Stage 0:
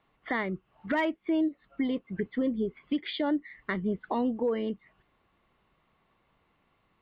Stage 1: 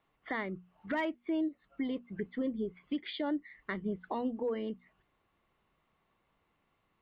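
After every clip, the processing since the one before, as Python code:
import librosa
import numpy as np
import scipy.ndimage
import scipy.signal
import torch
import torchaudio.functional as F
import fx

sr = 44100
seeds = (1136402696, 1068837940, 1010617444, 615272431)

y = fx.hum_notches(x, sr, base_hz=60, count=4)
y = y * 10.0 ** (-5.5 / 20.0)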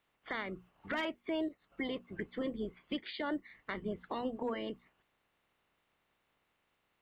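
y = fx.spec_clip(x, sr, under_db=14)
y = y * 10.0 ** (-2.5 / 20.0)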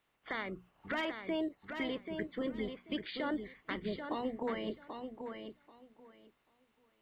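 y = fx.echo_feedback(x, sr, ms=786, feedback_pct=18, wet_db=-7)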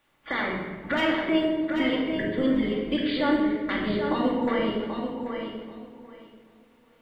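y = fx.room_shoebox(x, sr, seeds[0], volume_m3=1200.0, walls='mixed', distance_m=2.4)
y = y * 10.0 ** (7.0 / 20.0)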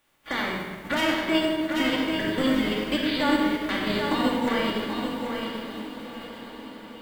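y = fx.envelope_flatten(x, sr, power=0.6)
y = fx.echo_diffused(y, sr, ms=921, feedback_pct=59, wet_db=-12.0)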